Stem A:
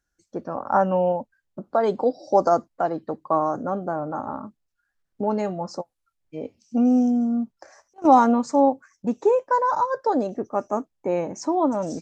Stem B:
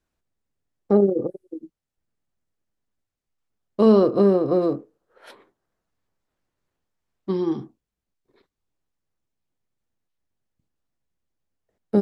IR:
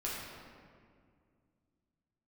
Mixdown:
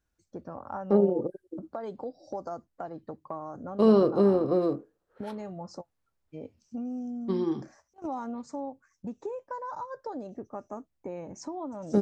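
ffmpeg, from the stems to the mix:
-filter_complex "[0:a]equalizer=f=72:w=0.78:g=13.5,acompressor=threshold=0.0398:ratio=3,volume=0.376[s0];[1:a]volume=0.562[s1];[s0][s1]amix=inputs=2:normalize=0"

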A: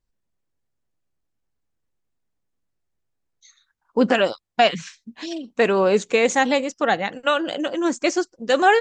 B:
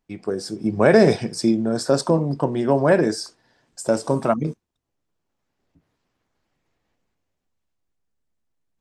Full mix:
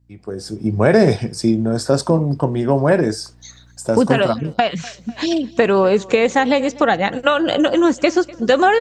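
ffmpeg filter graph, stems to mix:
-filter_complex "[0:a]acrossover=split=4600[s0][s1];[s1]acompressor=threshold=0.00562:ratio=4:attack=1:release=60[s2];[s0][s2]amix=inputs=2:normalize=0,equalizer=f=2300:w=1.5:g=-2.5,acompressor=threshold=0.0708:ratio=6,volume=1.33,asplit=2[s3][s4];[s4]volume=0.075[s5];[1:a]aeval=exprs='val(0)+0.00251*(sin(2*PI*60*n/s)+sin(2*PI*2*60*n/s)/2+sin(2*PI*3*60*n/s)/3+sin(2*PI*4*60*n/s)/4+sin(2*PI*5*60*n/s)/5)':c=same,volume=0.398[s6];[s5]aecho=0:1:248|496|744|992|1240|1488:1|0.43|0.185|0.0795|0.0342|0.0147[s7];[s3][s6][s7]amix=inputs=3:normalize=0,equalizer=f=100:t=o:w=0.89:g=9.5,dynaudnorm=f=160:g=5:m=3.98"

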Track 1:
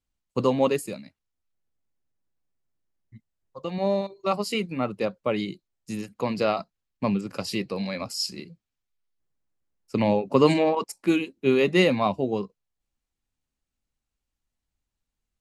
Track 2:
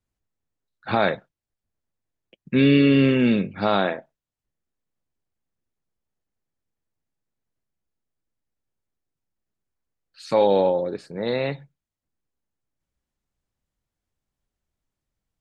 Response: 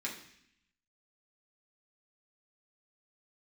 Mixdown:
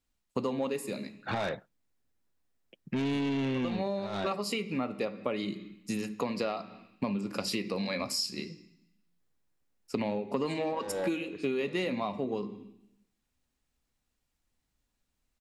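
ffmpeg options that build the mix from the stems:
-filter_complex "[0:a]acontrast=39,volume=0.668,asplit=3[s0][s1][s2];[s1]volume=0.376[s3];[1:a]asoftclip=type=tanh:threshold=0.106,adelay=400,volume=0.708[s4];[s2]apad=whole_len=696979[s5];[s4][s5]sidechaincompress=threshold=0.0631:ratio=8:attack=16:release=695[s6];[2:a]atrim=start_sample=2205[s7];[s3][s7]afir=irnorm=-1:irlink=0[s8];[s0][s6][s8]amix=inputs=3:normalize=0,acompressor=threshold=0.0355:ratio=8"

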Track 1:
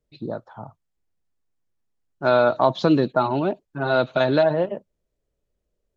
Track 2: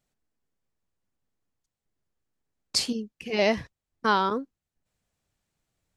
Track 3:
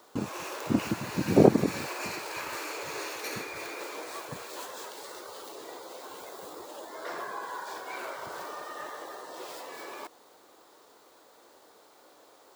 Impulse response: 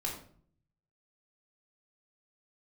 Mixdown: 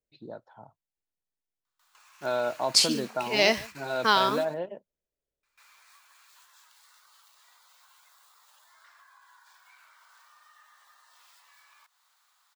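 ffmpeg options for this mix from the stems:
-filter_complex "[0:a]bandreject=f=1200:w=5.4,volume=0.355,asplit=2[s0][s1];[1:a]acrusher=bits=8:mix=0:aa=0.000001,adynamicequalizer=threshold=0.0112:dfrequency=2200:dqfactor=0.7:tfrequency=2200:tqfactor=0.7:attack=5:release=100:ratio=0.375:range=4:mode=boostabove:tftype=highshelf,volume=1.06,asplit=2[s2][s3];[s3]volume=0.0794[s4];[2:a]highpass=f=1100:w=0.5412,highpass=f=1100:w=1.3066,acompressor=threshold=0.00282:ratio=3,adelay=1650,volume=1.06,asplit=3[s5][s6][s7];[s5]atrim=end=4.4,asetpts=PTS-STARTPTS,afade=t=out:st=4.396:d=0.004:c=hsin[s8];[s6]atrim=start=4.4:end=5.43,asetpts=PTS-STARTPTS,volume=0[s9];[s7]atrim=start=5.43,asetpts=PTS-STARTPTS,afade=t=in:d=0.004:c=hsin[s10];[s8][s9][s10]concat=n=3:v=0:a=1,asplit=2[s11][s12];[s12]volume=0.422[s13];[s1]apad=whole_len=626298[s14];[s11][s14]sidechaingate=range=0.0398:threshold=0.00158:ratio=16:detection=peak[s15];[s4][s13]amix=inputs=2:normalize=0,aecho=0:1:144:1[s16];[s0][s2][s15][s16]amix=inputs=4:normalize=0,lowshelf=f=290:g=-9"

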